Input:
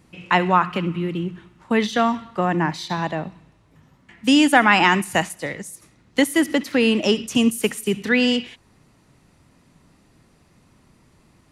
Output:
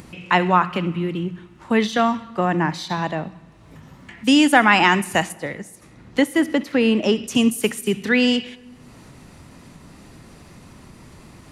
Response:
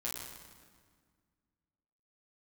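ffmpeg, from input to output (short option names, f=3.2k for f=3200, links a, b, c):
-filter_complex "[0:a]asettb=1/sr,asplit=3[a][b][c];[a]atrim=end=5.324[d];[b]atrim=start=5.32:end=7.24,asetpts=PTS-STARTPTS,afade=t=in:d=0.004:c=qsin,afade=t=out:st=1.916:d=0.004:c=qsin,highshelf=f=3.4k:g=-8.5[e];[c]atrim=start=7.236[f];[d][e]acrossfade=d=0.004:c1=hsin:c2=qsin[g];[g][f]acrossfade=d=0.004:c1=qsin:c2=hsin,acompressor=mode=upward:threshold=-33dB:ratio=2.5,asplit=2[h][i];[1:a]atrim=start_sample=2205,asetrate=52920,aresample=44100[j];[i][j]afir=irnorm=-1:irlink=0,volume=-18.5dB[k];[h][k]amix=inputs=2:normalize=0"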